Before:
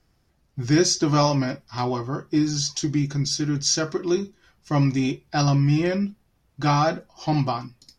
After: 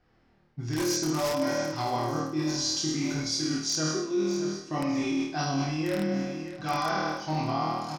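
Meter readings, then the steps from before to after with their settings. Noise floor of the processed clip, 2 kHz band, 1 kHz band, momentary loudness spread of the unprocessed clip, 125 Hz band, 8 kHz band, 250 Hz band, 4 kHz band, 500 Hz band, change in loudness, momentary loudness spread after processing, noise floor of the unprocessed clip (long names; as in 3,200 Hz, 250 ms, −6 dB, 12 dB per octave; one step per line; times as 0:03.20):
−64 dBFS, −3.0 dB, −4.0 dB, 9 LU, −11.0 dB, −5.0 dB, −5.5 dB, −3.5 dB, −3.5 dB, −5.5 dB, 5 LU, −66 dBFS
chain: low-shelf EQ 73 Hz −11.5 dB
flutter between parallel walls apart 4.4 metres, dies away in 1 s
in parallel at −4 dB: wrap-around overflow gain 7.5 dB
on the sum: flanger 0.61 Hz, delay 1.2 ms, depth 7.9 ms, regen +58%
repeating echo 616 ms, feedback 57%, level −19.5 dB
reversed playback
downward compressor 6 to 1, threshold −26 dBFS, peak gain reduction 15.5 dB
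reversed playback
low-pass that shuts in the quiet parts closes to 2,800 Hz, open at −29 dBFS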